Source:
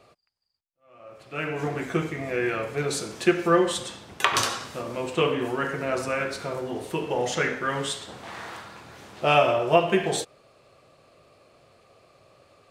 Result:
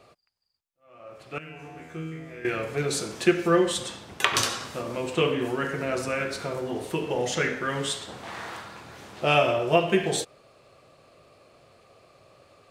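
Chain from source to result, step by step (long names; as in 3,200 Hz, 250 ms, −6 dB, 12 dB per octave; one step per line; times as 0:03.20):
dynamic equaliser 940 Hz, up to −5 dB, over −34 dBFS, Q 0.92
0:01.38–0:02.45: tuned comb filter 80 Hz, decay 1.1 s, harmonics all, mix 90%
level +1 dB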